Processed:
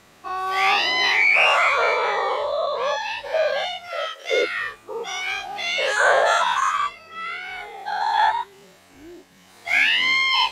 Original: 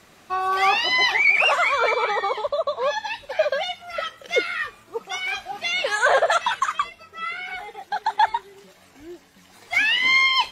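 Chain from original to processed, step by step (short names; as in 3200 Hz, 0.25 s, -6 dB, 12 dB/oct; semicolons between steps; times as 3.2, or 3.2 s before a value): spectral dilation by 0.12 s; 3.88–4.43 HPF 340 Hz 24 dB/oct; gain -5 dB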